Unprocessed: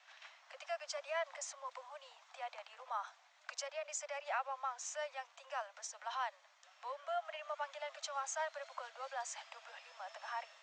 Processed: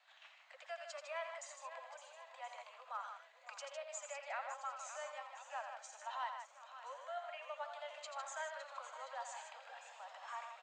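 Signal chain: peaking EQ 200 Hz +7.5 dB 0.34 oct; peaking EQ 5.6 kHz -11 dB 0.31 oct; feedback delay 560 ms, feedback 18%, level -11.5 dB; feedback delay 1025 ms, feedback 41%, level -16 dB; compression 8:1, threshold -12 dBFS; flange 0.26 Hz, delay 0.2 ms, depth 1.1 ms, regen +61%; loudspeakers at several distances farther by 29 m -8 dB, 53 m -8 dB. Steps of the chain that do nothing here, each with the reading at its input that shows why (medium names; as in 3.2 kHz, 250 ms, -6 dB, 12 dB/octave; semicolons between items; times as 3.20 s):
peaking EQ 200 Hz: input has nothing below 450 Hz; compression, threshold -12 dBFS: peak at its input -27.5 dBFS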